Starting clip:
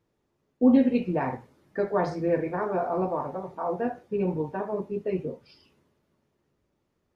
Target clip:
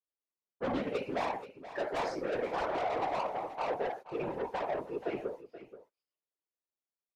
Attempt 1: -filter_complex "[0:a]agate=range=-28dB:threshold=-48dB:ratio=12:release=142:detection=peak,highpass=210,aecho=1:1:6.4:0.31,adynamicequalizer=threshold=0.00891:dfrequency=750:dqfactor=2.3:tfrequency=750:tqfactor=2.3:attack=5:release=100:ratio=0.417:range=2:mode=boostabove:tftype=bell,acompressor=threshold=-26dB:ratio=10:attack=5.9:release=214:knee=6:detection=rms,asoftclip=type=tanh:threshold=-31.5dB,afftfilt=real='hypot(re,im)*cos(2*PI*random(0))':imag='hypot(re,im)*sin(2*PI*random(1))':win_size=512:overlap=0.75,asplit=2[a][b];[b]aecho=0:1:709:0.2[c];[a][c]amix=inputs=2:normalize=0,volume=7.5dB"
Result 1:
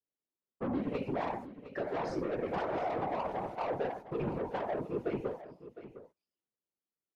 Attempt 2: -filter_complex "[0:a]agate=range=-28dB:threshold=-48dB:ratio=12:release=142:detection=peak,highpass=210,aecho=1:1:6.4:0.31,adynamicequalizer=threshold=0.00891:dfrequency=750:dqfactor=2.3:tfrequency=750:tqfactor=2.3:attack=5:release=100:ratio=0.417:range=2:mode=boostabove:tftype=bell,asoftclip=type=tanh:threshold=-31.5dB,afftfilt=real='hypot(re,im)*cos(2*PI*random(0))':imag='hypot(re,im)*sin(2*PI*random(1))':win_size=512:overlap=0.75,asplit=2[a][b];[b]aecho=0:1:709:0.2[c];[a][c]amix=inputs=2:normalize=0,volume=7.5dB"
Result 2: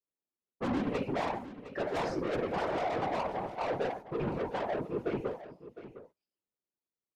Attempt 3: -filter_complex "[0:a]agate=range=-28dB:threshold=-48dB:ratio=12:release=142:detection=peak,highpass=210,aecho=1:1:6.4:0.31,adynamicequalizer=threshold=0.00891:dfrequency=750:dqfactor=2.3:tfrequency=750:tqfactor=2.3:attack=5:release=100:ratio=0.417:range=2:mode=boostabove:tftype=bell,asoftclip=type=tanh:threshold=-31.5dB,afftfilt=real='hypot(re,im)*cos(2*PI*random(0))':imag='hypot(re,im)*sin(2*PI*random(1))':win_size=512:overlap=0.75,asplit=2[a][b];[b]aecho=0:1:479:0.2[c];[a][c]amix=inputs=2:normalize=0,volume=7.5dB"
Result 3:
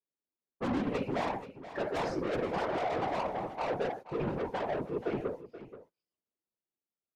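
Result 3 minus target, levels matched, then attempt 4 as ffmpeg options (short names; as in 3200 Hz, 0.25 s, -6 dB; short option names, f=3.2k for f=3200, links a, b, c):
250 Hz band +3.5 dB
-filter_complex "[0:a]agate=range=-28dB:threshold=-48dB:ratio=12:release=142:detection=peak,highpass=510,aecho=1:1:6.4:0.31,adynamicequalizer=threshold=0.00891:dfrequency=750:dqfactor=2.3:tfrequency=750:tqfactor=2.3:attack=5:release=100:ratio=0.417:range=2:mode=boostabove:tftype=bell,asoftclip=type=tanh:threshold=-31.5dB,afftfilt=real='hypot(re,im)*cos(2*PI*random(0))':imag='hypot(re,im)*sin(2*PI*random(1))':win_size=512:overlap=0.75,asplit=2[a][b];[b]aecho=0:1:479:0.2[c];[a][c]amix=inputs=2:normalize=0,volume=7.5dB"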